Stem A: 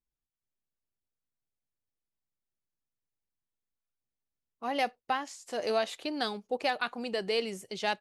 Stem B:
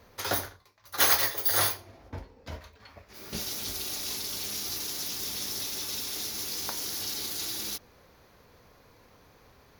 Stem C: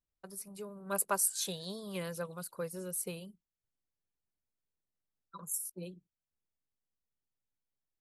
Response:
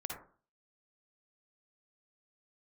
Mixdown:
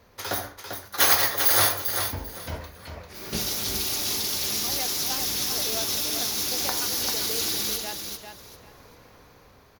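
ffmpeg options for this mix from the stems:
-filter_complex "[0:a]volume=-8dB,asplit=2[link_01][link_02];[link_02]volume=-6dB[link_03];[1:a]dynaudnorm=framelen=270:gausssize=7:maxgain=6.5dB,volume=-3.5dB,asplit=3[link_04][link_05][link_06];[link_05]volume=-3.5dB[link_07];[link_06]volume=-3.5dB[link_08];[2:a]adelay=400,volume=-13dB[link_09];[3:a]atrim=start_sample=2205[link_10];[link_07][link_10]afir=irnorm=-1:irlink=0[link_11];[link_03][link_08]amix=inputs=2:normalize=0,aecho=0:1:395|790|1185|1580:1|0.22|0.0484|0.0106[link_12];[link_01][link_04][link_09][link_11][link_12]amix=inputs=5:normalize=0"

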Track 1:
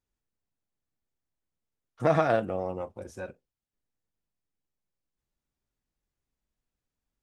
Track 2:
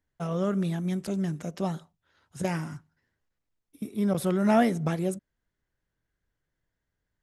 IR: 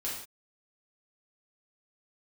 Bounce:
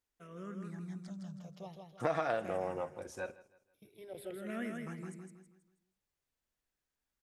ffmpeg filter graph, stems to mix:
-filter_complex "[0:a]lowshelf=frequency=330:gain=-11,volume=0dB,asplit=3[link_01][link_02][link_03];[link_02]volume=-22.5dB[link_04];[link_03]volume=-19.5dB[link_05];[1:a]equalizer=frequency=2100:width_type=o:width=1.7:gain=4,asplit=2[link_06][link_07];[link_07]afreqshift=-0.46[link_08];[link_06][link_08]amix=inputs=2:normalize=1,volume=-16dB,asplit=2[link_09][link_10];[link_10]volume=-4.5dB[link_11];[2:a]atrim=start_sample=2205[link_12];[link_04][link_12]afir=irnorm=-1:irlink=0[link_13];[link_05][link_11]amix=inputs=2:normalize=0,aecho=0:1:161|322|483|644|805:1|0.37|0.137|0.0507|0.0187[link_14];[link_01][link_09][link_13][link_14]amix=inputs=4:normalize=0,acompressor=threshold=-30dB:ratio=4"

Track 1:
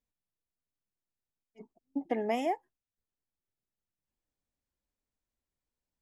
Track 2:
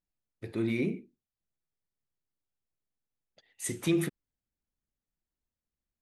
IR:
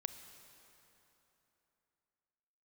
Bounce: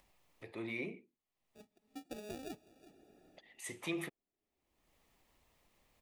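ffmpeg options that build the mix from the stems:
-filter_complex "[0:a]acrusher=samples=42:mix=1:aa=0.000001,volume=-17dB,asplit=3[link_01][link_02][link_03];[link_02]volume=-8.5dB[link_04];[link_03]volume=-21dB[link_05];[1:a]acrossover=split=570 2800:gain=0.141 1 0.251[link_06][link_07][link_08];[link_06][link_07][link_08]amix=inputs=3:normalize=0,volume=0.5dB[link_09];[2:a]atrim=start_sample=2205[link_10];[link_04][link_10]afir=irnorm=-1:irlink=0[link_11];[link_05]aecho=0:1:367:1[link_12];[link_01][link_09][link_11][link_12]amix=inputs=4:normalize=0,equalizer=frequency=1500:width_type=o:width=0.33:gain=-13,acompressor=mode=upward:threshold=-50dB:ratio=2.5"

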